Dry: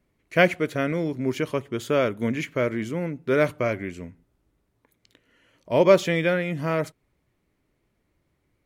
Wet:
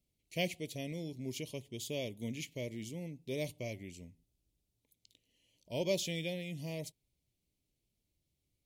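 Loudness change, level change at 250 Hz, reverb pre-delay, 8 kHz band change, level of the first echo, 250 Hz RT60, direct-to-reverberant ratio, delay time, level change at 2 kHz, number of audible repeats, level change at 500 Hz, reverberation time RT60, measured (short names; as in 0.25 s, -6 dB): -16.0 dB, -15.0 dB, none, -2.5 dB, none, none, none, none, -18.0 dB, none, -18.0 dB, none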